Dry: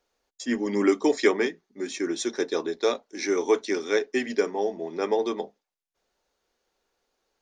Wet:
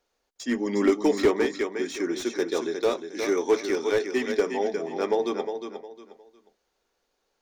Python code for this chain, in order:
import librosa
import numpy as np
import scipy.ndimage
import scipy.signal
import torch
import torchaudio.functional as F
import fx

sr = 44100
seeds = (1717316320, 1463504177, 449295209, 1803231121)

y = fx.echo_feedback(x, sr, ms=358, feedback_pct=28, wet_db=-8)
y = fx.slew_limit(y, sr, full_power_hz=100.0)